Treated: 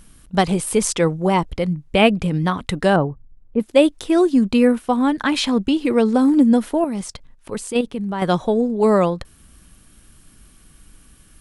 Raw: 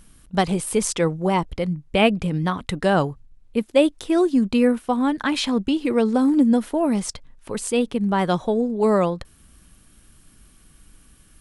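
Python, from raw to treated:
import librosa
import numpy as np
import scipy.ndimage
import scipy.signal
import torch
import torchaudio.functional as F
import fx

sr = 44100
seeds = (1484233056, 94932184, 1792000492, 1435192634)

y = fx.bessel_lowpass(x, sr, hz=850.0, order=2, at=(2.96, 3.6))
y = fx.level_steps(y, sr, step_db=9, at=(6.84, 8.22))
y = F.gain(torch.from_numpy(y), 3.0).numpy()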